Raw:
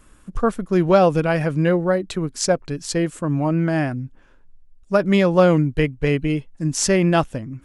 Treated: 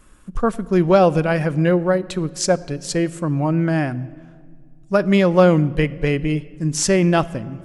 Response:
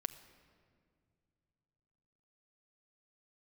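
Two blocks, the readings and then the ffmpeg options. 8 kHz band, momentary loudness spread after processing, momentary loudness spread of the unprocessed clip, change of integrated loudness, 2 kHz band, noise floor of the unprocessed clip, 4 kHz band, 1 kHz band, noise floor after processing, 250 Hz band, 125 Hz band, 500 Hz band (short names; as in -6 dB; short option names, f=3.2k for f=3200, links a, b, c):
+0.5 dB, 10 LU, 10 LU, +1.0 dB, +0.5 dB, -51 dBFS, +0.5 dB, +0.5 dB, -45 dBFS, +1.0 dB, +1.5 dB, +1.0 dB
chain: -filter_complex "[0:a]asplit=2[a][b];[1:a]atrim=start_sample=2205,asetrate=48510,aresample=44100[c];[b][c]afir=irnorm=-1:irlink=0,volume=1.5dB[d];[a][d]amix=inputs=2:normalize=0,volume=-5dB"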